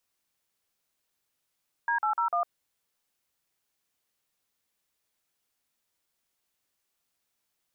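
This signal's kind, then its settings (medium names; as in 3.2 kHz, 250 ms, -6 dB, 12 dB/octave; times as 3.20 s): DTMF "D801", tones 105 ms, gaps 44 ms, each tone -26.5 dBFS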